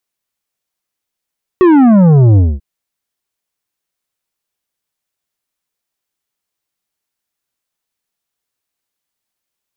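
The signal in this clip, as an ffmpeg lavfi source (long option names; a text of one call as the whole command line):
ffmpeg -f lavfi -i "aevalsrc='0.562*clip((0.99-t)/0.23,0,1)*tanh(2.99*sin(2*PI*380*0.99/log(65/380)*(exp(log(65/380)*t/0.99)-1)))/tanh(2.99)':duration=0.99:sample_rate=44100" out.wav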